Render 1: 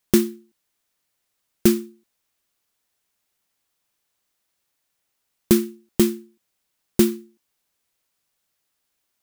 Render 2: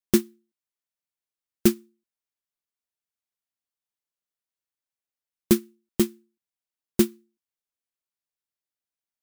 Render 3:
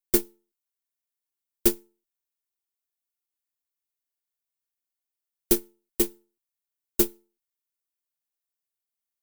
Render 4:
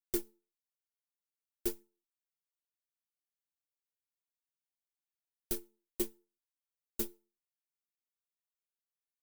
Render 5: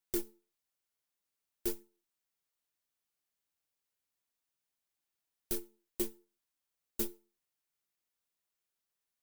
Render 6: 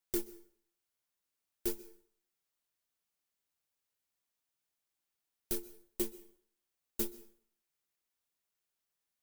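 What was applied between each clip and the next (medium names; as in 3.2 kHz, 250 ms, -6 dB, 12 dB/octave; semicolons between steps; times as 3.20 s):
upward expansion 2.5:1, over -23 dBFS; trim -1 dB
comb filter that takes the minimum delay 2.8 ms; treble shelf 8.6 kHz +11.5 dB; trim -3 dB
peak limiter -9 dBFS, peak gain reduction 5 dB; flange 1.1 Hz, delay 0.4 ms, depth 6.6 ms, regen +39%; trim -7 dB
peak limiter -27 dBFS, peak gain reduction 8.5 dB; trim +6 dB
plate-style reverb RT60 0.59 s, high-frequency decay 0.8×, pre-delay 115 ms, DRR 18.5 dB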